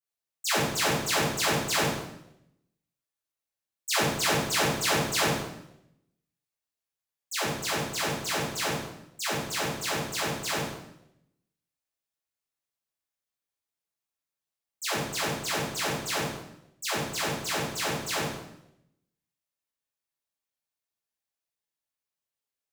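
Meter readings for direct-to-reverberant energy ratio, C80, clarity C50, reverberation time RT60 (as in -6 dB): -9.0 dB, 5.5 dB, 2.0 dB, 0.80 s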